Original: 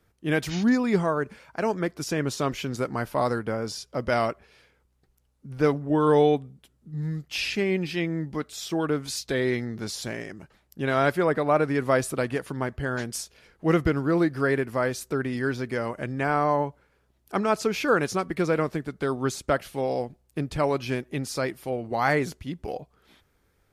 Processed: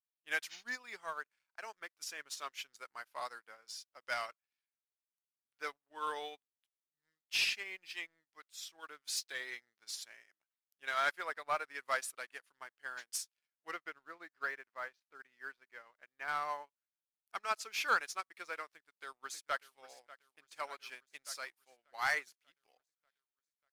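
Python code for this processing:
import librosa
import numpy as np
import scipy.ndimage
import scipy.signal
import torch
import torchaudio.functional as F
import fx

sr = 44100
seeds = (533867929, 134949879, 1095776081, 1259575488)

y = fx.air_absorb(x, sr, metres=270.0, at=(13.71, 16.28))
y = fx.echo_throw(y, sr, start_s=18.68, length_s=1.09, ms=590, feedback_pct=75, wet_db=-9.5)
y = scipy.signal.sosfilt(scipy.signal.butter(2, 1400.0, 'highpass', fs=sr, output='sos'), y)
y = fx.leveller(y, sr, passes=2)
y = fx.upward_expand(y, sr, threshold_db=-39.0, expansion=2.5)
y = F.gain(torch.from_numpy(y), -5.5).numpy()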